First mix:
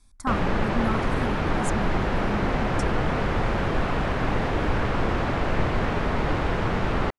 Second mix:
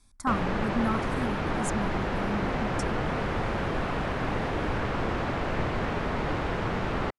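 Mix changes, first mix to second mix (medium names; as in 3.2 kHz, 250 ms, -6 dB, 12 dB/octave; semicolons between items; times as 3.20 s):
background -3.5 dB; master: add bass shelf 62 Hz -6 dB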